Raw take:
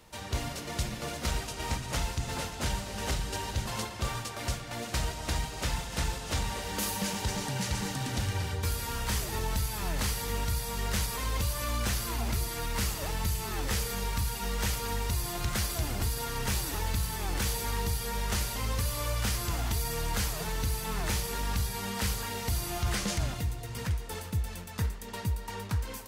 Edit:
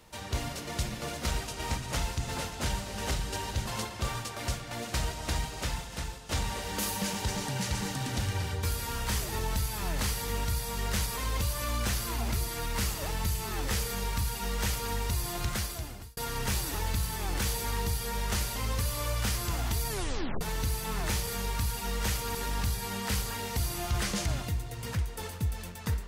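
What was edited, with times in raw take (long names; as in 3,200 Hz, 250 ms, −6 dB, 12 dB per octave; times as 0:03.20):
0:05.49–0:06.29: fade out, to −10.5 dB
0:13.85–0:14.93: duplicate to 0:21.27
0:15.44–0:16.17: fade out
0:19.89: tape stop 0.52 s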